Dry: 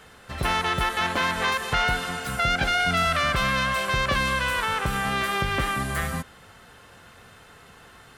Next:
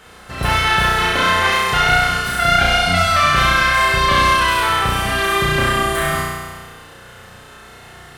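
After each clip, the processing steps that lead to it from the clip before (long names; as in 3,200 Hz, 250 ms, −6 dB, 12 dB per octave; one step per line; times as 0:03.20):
surface crackle 52 per second −50 dBFS
on a send: flutter between parallel walls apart 5.7 metres, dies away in 1.5 s
on the sum: level +3.5 dB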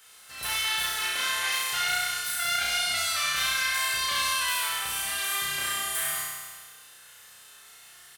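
first-order pre-emphasis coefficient 0.97
double-tracking delay 14 ms −8 dB
level −1.5 dB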